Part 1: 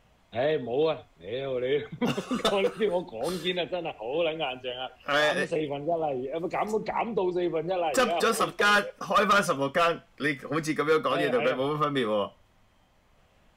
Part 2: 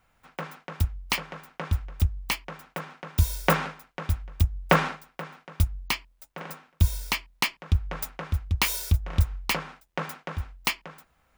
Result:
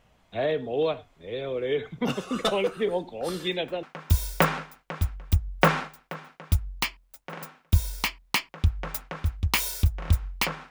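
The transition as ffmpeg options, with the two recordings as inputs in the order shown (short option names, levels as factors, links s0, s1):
-filter_complex "[1:a]asplit=2[s0][s1];[0:a]apad=whole_dur=10.7,atrim=end=10.7,atrim=end=3.832[s2];[s1]atrim=start=2.908:end=9.78[s3];[s0]atrim=start=2.47:end=2.91,asetpts=PTS-STARTPTS,volume=0.15,afade=t=in:d=0.004:c=hsin,afade=t=out:st=0.436:d=0.004:c=hsin,adelay=3390[s4];[s2][s3]acrossfade=d=0.004:c1=hsin:c2=hsin[s5];[s5][s4]amix=inputs=2:normalize=0"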